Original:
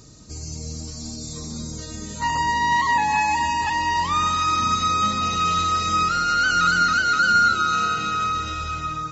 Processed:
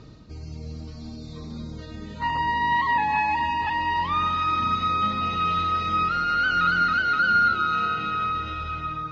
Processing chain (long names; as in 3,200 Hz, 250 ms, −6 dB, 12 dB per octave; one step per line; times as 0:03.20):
low-pass filter 3,600 Hz 24 dB per octave
reversed playback
upward compression, threshold −34 dBFS
reversed playback
level −2.5 dB